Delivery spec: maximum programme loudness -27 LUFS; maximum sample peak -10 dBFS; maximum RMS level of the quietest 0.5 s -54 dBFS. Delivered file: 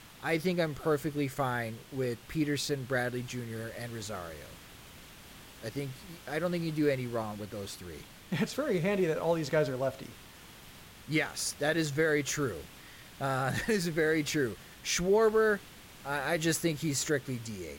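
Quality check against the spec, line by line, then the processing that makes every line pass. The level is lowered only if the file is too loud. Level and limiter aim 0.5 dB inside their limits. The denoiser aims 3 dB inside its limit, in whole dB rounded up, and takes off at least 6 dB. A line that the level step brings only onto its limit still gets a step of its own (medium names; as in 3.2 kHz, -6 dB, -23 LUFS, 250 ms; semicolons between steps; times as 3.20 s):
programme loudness -31.5 LUFS: pass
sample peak -17.5 dBFS: pass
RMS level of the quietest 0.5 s -52 dBFS: fail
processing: noise reduction 6 dB, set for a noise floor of -52 dBFS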